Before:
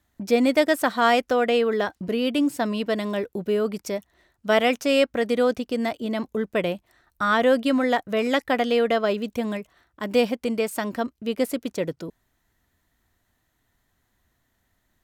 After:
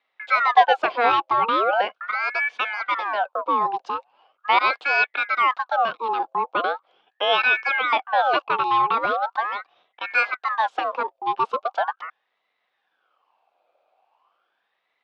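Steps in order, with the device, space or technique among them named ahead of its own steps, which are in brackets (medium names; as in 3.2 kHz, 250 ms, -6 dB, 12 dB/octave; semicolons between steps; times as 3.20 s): voice changer toy (ring modulator with a swept carrier 1.3 kHz, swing 55%, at 0.4 Hz; cabinet simulation 490–3600 Hz, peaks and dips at 520 Hz +4 dB, 760 Hz +9 dB, 1.1 kHz +3 dB, 1.9 kHz -9 dB); trim +3.5 dB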